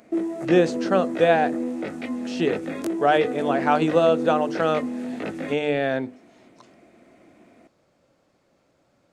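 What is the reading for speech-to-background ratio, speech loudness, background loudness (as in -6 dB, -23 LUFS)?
7.0 dB, -22.5 LUFS, -29.5 LUFS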